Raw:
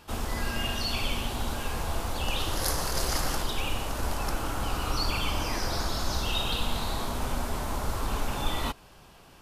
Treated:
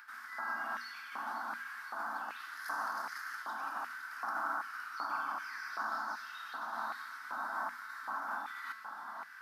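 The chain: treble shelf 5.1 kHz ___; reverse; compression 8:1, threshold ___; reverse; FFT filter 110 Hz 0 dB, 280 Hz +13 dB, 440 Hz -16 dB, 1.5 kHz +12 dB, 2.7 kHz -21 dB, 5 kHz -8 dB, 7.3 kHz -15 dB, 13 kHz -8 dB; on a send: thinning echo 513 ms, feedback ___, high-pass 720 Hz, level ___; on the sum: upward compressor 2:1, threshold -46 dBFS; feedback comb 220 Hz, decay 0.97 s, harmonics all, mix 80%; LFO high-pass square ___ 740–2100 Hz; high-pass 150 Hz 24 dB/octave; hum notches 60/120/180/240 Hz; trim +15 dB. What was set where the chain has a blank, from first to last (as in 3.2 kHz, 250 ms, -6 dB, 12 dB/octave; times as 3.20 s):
-3 dB, -38 dBFS, 72%, -10.5 dB, 1.3 Hz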